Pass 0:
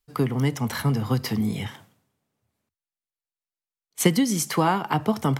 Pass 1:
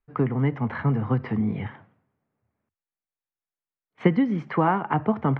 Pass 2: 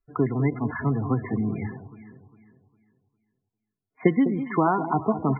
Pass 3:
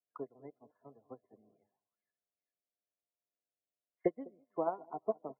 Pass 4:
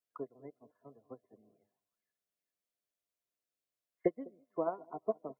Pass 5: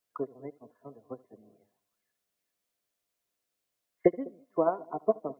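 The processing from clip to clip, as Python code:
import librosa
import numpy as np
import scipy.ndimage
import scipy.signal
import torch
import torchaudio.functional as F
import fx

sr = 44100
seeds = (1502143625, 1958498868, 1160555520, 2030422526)

y1 = scipy.signal.sosfilt(scipy.signal.butter(4, 2100.0, 'lowpass', fs=sr, output='sos'), x)
y2 = y1 + 0.35 * np.pad(y1, (int(2.9 * sr / 1000.0), 0))[:len(y1)]
y2 = fx.echo_alternate(y2, sr, ms=202, hz=840.0, feedback_pct=57, wet_db=-10.0)
y2 = fx.spec_topn(y2, sr, count=32)
y3 = fx.dmg_buzz(y2, sr, base_hz=100.0, harmonics=7, level_db=-46.0, tilt_db=-2, odd_only=False)
y3 = fx.auto_wah(y3, sr, base_hz=570.0, top_hz=2200.0, q=3.9, full_db=-25.5, direction='down')
y3 = fx.upward_expand(y3, sr, threshold_db=-50.0, expansion=2.5)
y3 = y3 * 10.0 ** (1.0 / 20.0)
y4 = fx.peak_eq(y3, sr, hz=830.0, db=-8.5, octaves=0.24)
y4 = y4 * 10.0 ** (1.0 / 20.0)
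y5 = y4 + 10.0 ** (-23.0 / 20.0) * np.pad(y4, (int(76 * sr / 1000.0), 0))[:len(y4)]
y5 = y5 * 10.0 ** (8.0 / 20.0)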